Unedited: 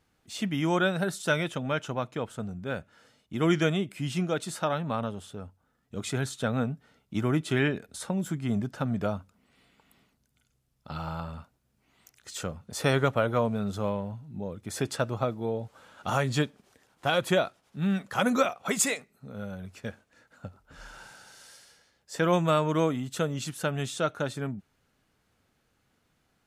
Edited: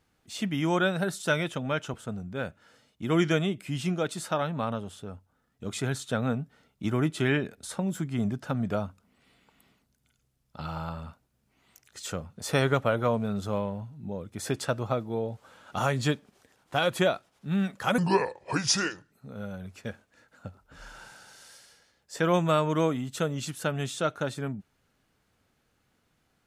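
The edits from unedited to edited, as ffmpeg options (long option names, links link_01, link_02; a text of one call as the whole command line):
ffmpeg -i in.wav -filter_complex "[0:a]asplit=4[link_01][link_02][link_03][link_04];[link_01]atrim=end=1.942[link_05];[link_02]atrim=start=2.248:end=18.294[link_06];[link_03]atrim=start=18.29:end=19.11,asetpts=PTS-STARTPTS,asetrate=31752,aresample=44100[link_07];[link_04]atrim=start=19.106[link_08];[link_05][link_06]acrossfade=duration=0.004:curve1=hsin:curve2=hsin[link_09];[link_09][link_07]acrossfade=duration=0.004:curve1=hsin:curve2=hsin[link_10];[link_10][link_08]acrossfade=duration=0.004:curve1=hsin:curve2=hsin" out.wav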